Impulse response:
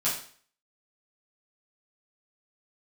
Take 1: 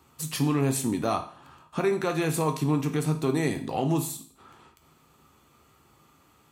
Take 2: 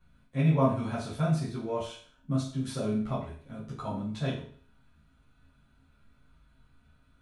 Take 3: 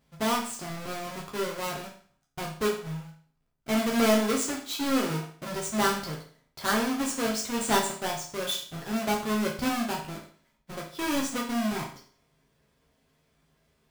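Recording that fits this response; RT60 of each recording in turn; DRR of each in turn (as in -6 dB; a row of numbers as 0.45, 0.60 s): 2; 0.50, 0.50, 0.50 s; 4.5, -10.0, -2.5 dB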